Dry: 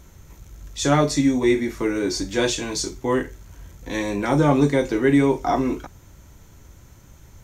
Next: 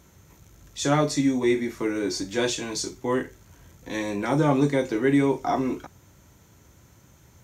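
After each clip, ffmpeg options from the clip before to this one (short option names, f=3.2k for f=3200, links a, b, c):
-af "highpass=92,volume=-3.5dB"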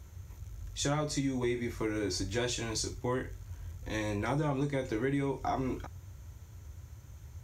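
-af "lowshelf=f=130:t=q:w=1.5:g=12,acompressor=threshold=-24dB:ratio=6,volume=-4dB"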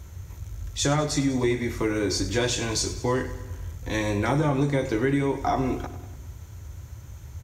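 -af "aecho=1:1:98|196|294|392|490|588:0.2|0.118|0.0695|0.041|0.0242|0.0143,volume=8dB"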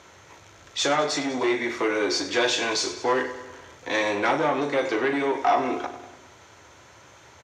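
-filter_complex "[0:a]asoftclip=type=tanh:threshold=-20.5dB,highpass=470,lowpass=4.4k,asplit=2[a][b];[b]adelay=39,volume=-12.5dB[c];[a][c]amix=inputs=2:normalize=0,volume=8dB"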